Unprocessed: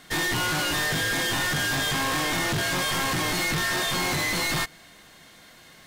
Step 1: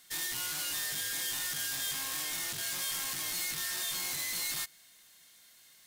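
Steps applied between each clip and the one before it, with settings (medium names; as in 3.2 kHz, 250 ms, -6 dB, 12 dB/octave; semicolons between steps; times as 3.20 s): pre-emphasis filter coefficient 0.9; trim -3 dB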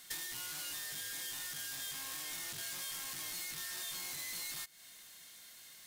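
compression 6:1, threshold -43 dBFS, peak gain reduction 12 dB; trim +4 dB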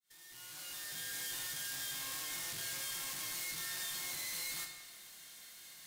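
fade-in on the opening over 1.21 s; reverberation RT60 1.3 s, pre-delay 26 ms, DRR 3 dB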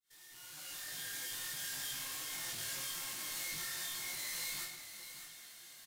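delay 604 ms -10 dB; detune thickener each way 39 cents; trim +3 dB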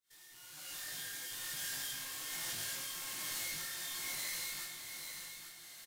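tremolo 1.2 Hz, depth 30%; delay 844 ms -8.5 dB; trim +1 dB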